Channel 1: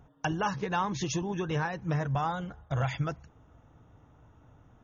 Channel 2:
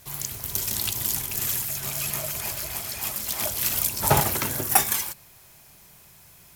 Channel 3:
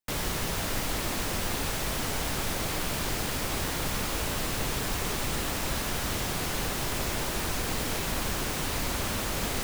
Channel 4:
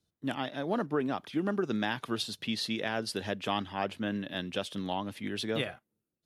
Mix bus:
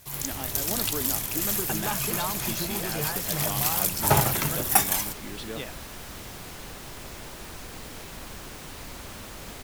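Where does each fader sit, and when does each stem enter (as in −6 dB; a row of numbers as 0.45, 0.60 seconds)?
−3.5, −1.0, −10.0, −4.5 decibels; 1.45, 0.00, 0.05, 0.00 seconds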